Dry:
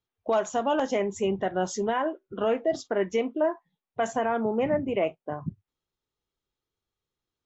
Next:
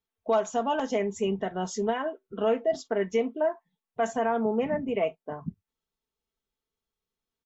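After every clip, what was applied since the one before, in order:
comb filter 4.5 ms, depth 56%
level −3 dB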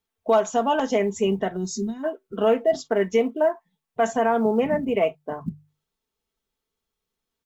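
gain on a spectral selection 0:01.56–0:02.04, 400–3,600 Hz −23 dB
floating-point word with a short mantissa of 6 bits
mains-hum notches 50/100/150 Hz
level +5.5 dB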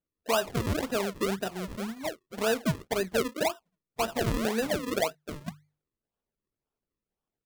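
sample-and-hold swept by an LFO 40×, swing 100% 1.9 Hz
level −7.5 dB

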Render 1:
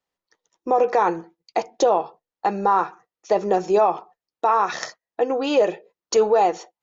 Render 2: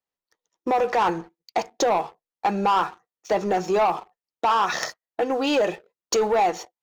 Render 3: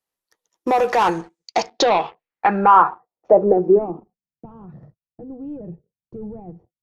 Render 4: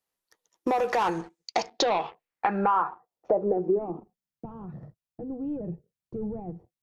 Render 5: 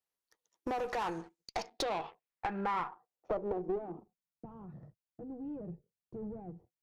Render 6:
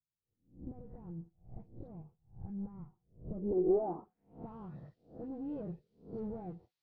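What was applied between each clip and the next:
dynamic equaliser 440 Hz, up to −6 dB, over −28 dBFS, Q 1.1; leveller curve on the samples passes 2; level −4 dB
low-pass filter sweep 12,000 Hz → 140 Hz, 0:01.01–0:04.47; level +4 dB
downward compressor 3 to 1, threshold −25 dBFS, peak gain reduction 13 dB
one-sided soft clipper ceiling −25 dBFS; level −8 dB
peak hold with a rise ahead of every peak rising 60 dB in 0.37 s; low-pass filter sweep 140 Hz → 4,300 Hz, 0:03.25–0:04.46; all-pass dispersion highs, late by 64 ms, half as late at 1,700 Hz; level +1 dB

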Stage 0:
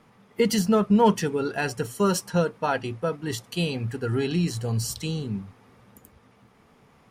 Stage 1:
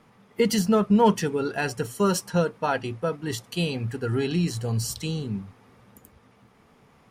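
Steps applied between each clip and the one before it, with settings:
no processing that can be heard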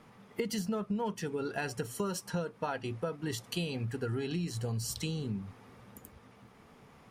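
downward compressor 6 to 1, threshold −32 dBFS, peak gain reduction 17 dB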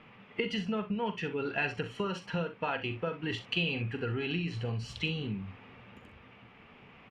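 low-pass with resonance 2,700 Hz, resonance Q 3.7
ambience of single reflections 42 ms −11 dB, 64 ms −13 dB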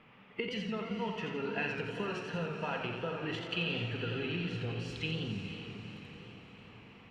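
feedback delay with all-pass diffusion 472 ms, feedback 55%, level −8.5 dB
feedback echo with a swinging delay time 86 ms, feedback 60%, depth 108 cents, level −6 dB
level −4.5 dB

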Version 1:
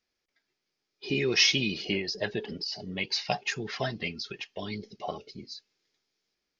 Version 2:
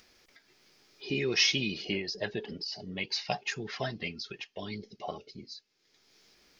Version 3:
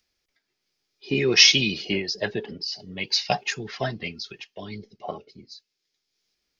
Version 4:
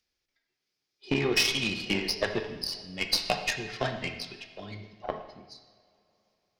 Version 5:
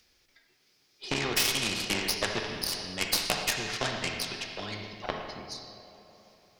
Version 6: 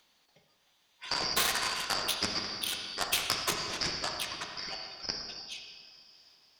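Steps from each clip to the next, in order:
upward compression, threshold −41 dBFS; level −3 dB
multiband upward and downward expander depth 70%; level +5.5 dB
downward compressor 16 to 1, threshold −22 dBFS, peak gain reduction 13.5 dB; harmonic generator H 4 −18 dB, 5 −25 dB, 7 −19 dB, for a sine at −11.5 dBFS; convolution reverb, pre-delay 3 ms, DRR 4.5 dB
every bin compressed towards the loudest bin 2 to 1; level +2 dB
band-splitting scrambler in four parts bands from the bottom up 2341; level −2 dB

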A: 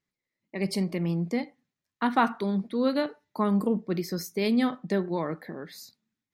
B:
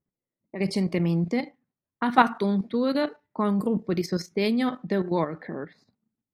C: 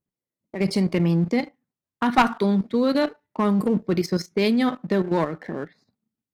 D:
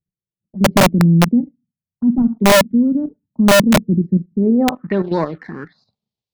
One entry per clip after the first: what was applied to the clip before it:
low-pass that shuts in the quiet parts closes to 740 Hz, open at −24 dBFS; output level in coarse steps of 10 dB; level +7 dB
leveller curve on the samples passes 1; asymmetric clip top −13 dBFS
phaser swept by the level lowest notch 250 Hz, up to 3,200 Hz, full sweep at −16.5 dBFS; low-pass filter sweep 220 Hz → 4,200 Hz, 0:04.38–0:05.08; wrap-around overflow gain 10 dB; level +4 dB

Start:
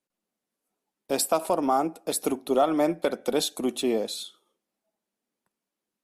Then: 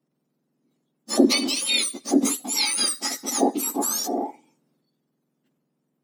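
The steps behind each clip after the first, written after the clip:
frequency axis turned over on the octave scale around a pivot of 1,700 Hz
transient designer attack −2 dB, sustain +5 dB
level +5.5 dB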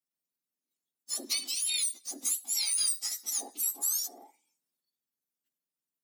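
first-order pre-emphasis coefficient 0.97
level −4.5 dB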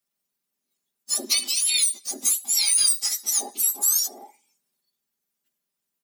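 comb filter 5 ms, depth 50%
level +8 dB

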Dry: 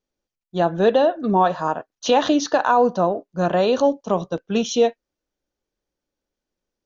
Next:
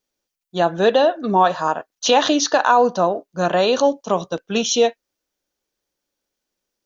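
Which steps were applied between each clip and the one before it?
spectral tilt +2 dB per octave
level +3 dB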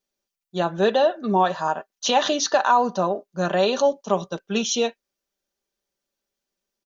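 comb filter 5.1 ms, depth 47%
level −4.5 dB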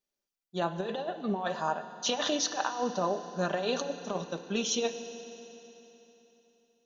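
compressor whose output falls as the input rises −21 dBFS, ratio −0.5
feedback delay network reverb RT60 3.5 s, high-frequency decay 0.95×, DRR 9.5 dB
level −8.5 dB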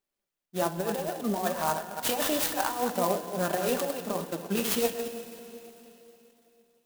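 delay that plays each chunk backwards 154 ms, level −7.5 dB
flanger 1.4 Hz, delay 2.4 ms, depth 4.1 ms, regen +69%
converter with an unsteady clock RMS 0.062 ms
level +6.5 dB

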